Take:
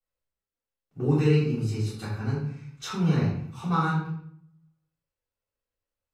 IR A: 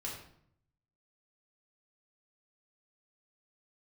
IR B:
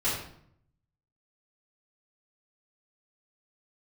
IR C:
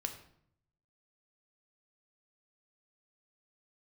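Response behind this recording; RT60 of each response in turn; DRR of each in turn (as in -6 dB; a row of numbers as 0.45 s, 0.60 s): B; 0.65 s, 0.65 s, 0.65 s; -5.0 dB, -14.0 dB, 4.5 dB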